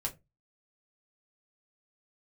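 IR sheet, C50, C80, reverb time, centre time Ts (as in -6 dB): 18.0 dB, 24.5 dB, not exponential, 9 ms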